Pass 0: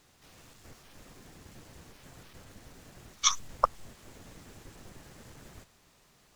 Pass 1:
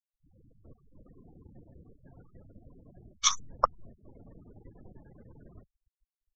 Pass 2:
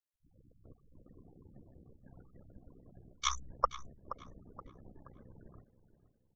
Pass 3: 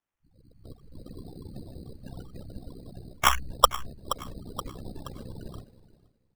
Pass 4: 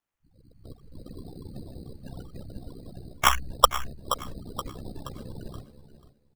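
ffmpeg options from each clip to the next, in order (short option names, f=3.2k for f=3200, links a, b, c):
-af "afftfilt=real='re*gte(hypot(re,im),0.00501)':imag='im*gte(hypot(re,im),0.00501)':win_size=1024:overlap=0.75"
-filter_complex "[0:a]acrossover=split=2800[a][b];[b]acompressor=threshold=-32dB:ratio=4:attack=1:release=60[c];[a][c]amix=inputs=2:normalize=0,tremolo=f=64:d=0.788,asplit=2[d][e];[e]adelay=475,lowpass=f=2.9k:p=1,volume=-12.5dB,asplit=2[f][g];[g]adelay=475,lowpass=f=2.9k:p=1,volume=0.41,asplit=2[h][i];[i]adelay=475,lowpass=f=2.9k:p=1,volume=0.41,asplit=2[j][k];[k]adelay=475,lowpass=f=2.9k:p=1,volume=0.41[l];[d][f][h][j][l]amix=inputs=5:normalize=0"
-af "dynaudnorm=f=120:g=11:m=12.5dB,acrusher=samples=10:mix=1:aa=0.000001,volume=2.5dB"
-af "aecho=1:1:489:0.188,volume=1dB"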